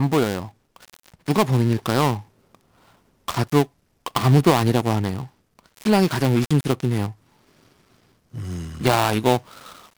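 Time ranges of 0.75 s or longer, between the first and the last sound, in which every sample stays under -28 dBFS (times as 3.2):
2.19–3.28
7.1–8.35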